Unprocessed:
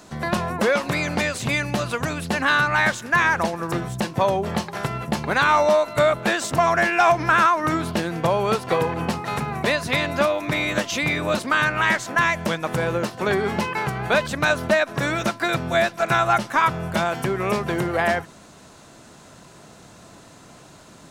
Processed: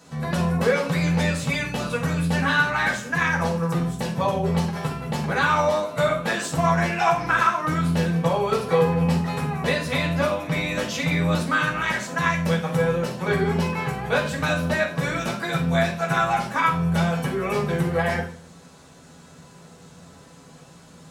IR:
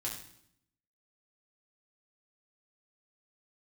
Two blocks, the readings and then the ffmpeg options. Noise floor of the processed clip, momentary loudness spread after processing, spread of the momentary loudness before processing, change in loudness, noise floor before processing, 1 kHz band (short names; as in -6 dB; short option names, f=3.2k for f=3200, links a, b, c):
-48 dBFS, 5 LU, 8 LU, -1.5 dB, -47 dBFS, -3.0 dB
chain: -filter_complex "[1:a]atrim=start_sample=2205,asetrate=66150,aresample=44100[a];[0:a][a]afir=irnorm=-1:irlink=0"